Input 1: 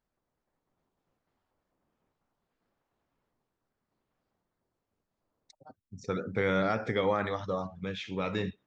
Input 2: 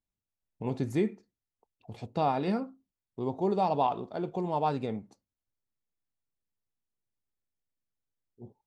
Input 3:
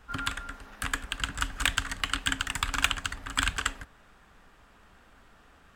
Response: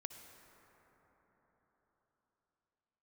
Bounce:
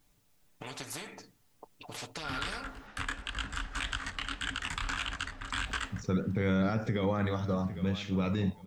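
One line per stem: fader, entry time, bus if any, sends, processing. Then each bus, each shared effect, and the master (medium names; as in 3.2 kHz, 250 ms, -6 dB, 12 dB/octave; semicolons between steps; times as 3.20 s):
-3.0 dB, 0.00 s, no send, echo send -17 dB, high-pass 100 Hz; tone controls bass +15 dB, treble +7 dB
-2.5 dB, 0.00 s, muted 2.87–5.57 s, no send, no echo send, comb 6.8 ms, depth 78%; compression 4:1, threshold -32 dBFS, peak gain reduction 11.5 dB; spectrum-flattening compressor 4:1
+1.0 dB, 2.15 s, no send, no echo send, low-pass 6.4 kHz 12 dB/octave; detune thickener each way 58 cents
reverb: none
echo: feedback delay 805 ms, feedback 18%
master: peak limiter -21 dBFS, peak gain reduction 11 dB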